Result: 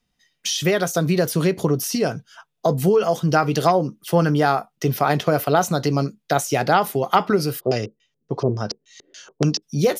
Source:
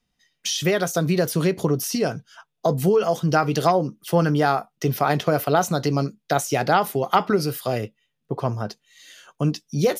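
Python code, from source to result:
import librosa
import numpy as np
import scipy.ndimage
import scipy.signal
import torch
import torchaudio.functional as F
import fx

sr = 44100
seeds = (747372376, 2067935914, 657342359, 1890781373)

y = fx.filter_lfo_lowpass(x, sr, shape='square', hz=3.5, low_hz=400.0, high_hz=5700.0, q=4.1, at=(7.59, 9.62), fade=0.02)
y = y * 10.0 ** (1.5 / 20.0)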